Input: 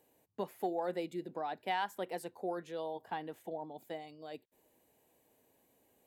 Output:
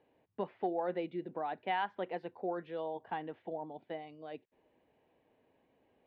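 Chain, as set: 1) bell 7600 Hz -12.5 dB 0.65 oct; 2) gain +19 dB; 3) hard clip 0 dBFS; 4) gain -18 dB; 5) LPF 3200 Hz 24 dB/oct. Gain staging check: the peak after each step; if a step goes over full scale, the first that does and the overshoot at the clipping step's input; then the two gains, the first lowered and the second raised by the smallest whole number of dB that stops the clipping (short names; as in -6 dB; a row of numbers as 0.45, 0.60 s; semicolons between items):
-22.5, -3.5, -3.5, -21.5, -22.0 dBFS; no overload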